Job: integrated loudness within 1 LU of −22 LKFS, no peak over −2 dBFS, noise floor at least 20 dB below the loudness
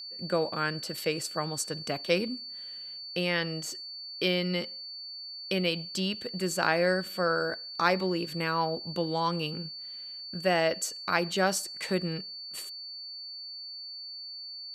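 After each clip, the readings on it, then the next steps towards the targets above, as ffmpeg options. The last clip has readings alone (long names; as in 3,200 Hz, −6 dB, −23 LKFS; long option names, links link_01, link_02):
interfering tone 4,500 Hz; level of the tone −39 dBFS; integrated loudness −31.0 LKFS; sample peak −8.5 dBFS; target loudness −22.0 LKFS
→ -af "bandreject=frequency=4500:width=30"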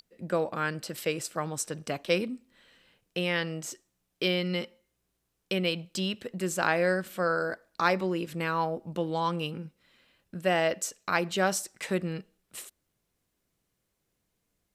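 interfering tone none found; integrated loudness −30.0 LKFS; sample peak −9.0 dBFS; target loudness −22.0 LKFS
→ -af "volume=8dB,alimiter=limit=-2dB:level=0:latency=1"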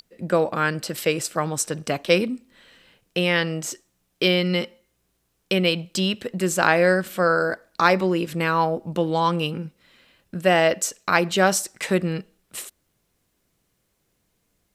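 integrated loudness −22.5 LKFS; sample peak −2.0 dBFS; background noise floor −72 dBFS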